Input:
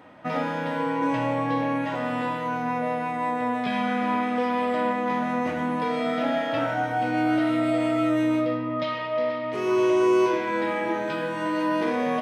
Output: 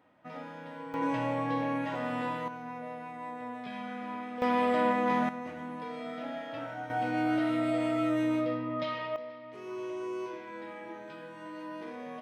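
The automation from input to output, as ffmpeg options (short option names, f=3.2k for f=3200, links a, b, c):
-af "asetnsamples=n=441:p=0,asendcmd='0.94 volume volume -6dB;2.48 volume volume -14dB;4.42 volume volume -2dB;5.29 volume volume -13.5dB;6.9 volume volume -6dB;9.16 volume volume -17dB',volume=-16dB"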